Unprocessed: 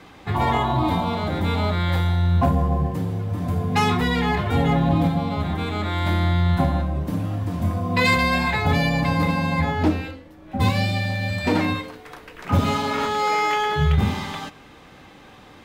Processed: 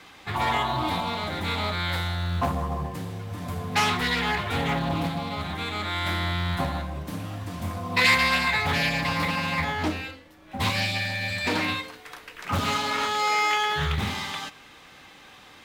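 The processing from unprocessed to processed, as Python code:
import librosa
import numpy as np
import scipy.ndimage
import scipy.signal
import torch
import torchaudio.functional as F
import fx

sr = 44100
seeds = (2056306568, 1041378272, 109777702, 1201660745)

p1 = fx.tilt_shelf(x, sr, db=-6.5, hz=970.0)
p2 = fx.quant_float(p1, sr, bits=2)
p3 = p1 + (p2 * 10.0 ** (-9.5 / 20.0))
p4 = fx.doppler_dist(p3, sr, depth_ms=0.26)
y = p4 * 10.0 ** (-5.5 / 20.0)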